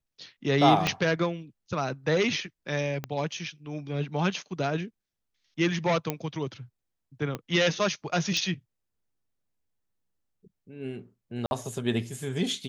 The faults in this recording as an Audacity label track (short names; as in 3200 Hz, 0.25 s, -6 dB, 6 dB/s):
0.870000	0.870000	pop -10 dBFS
3.040000	3.040000	pop -18 dBFS
6.100000	6.100000	pop -13 dBFS
7.350000	7.350000	pop -18 dBFS
8.370000	8.370000	pop -16 dBFS
11.460000	11.510000	gap 51 ms